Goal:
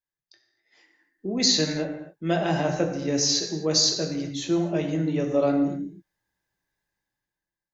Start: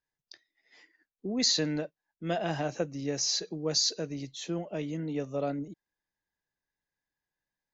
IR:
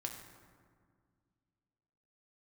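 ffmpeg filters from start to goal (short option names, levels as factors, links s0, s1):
-filter_complex "[0:a]dynaudnorm=f=260:g=7:m=5.01[s0];[1:a]atrim=start_sample=2205,afade=t=out:st=0.33:d=0.01,atrim=end_sample=14994[s1];[s0][s1]afir=irnorm=-1:irlink=0,volume=0.631"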